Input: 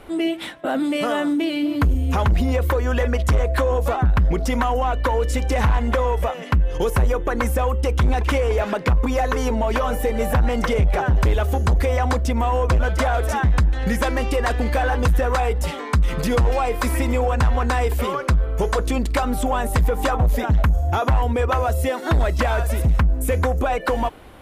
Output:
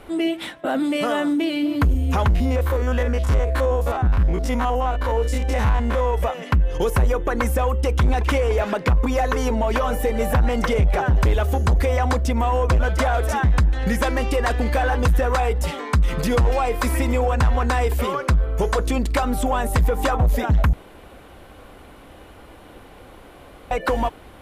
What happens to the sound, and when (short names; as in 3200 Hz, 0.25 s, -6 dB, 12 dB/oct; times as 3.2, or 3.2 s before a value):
2.3–6.14 stepped spectrum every 50 ms
20.73–23.71 room tone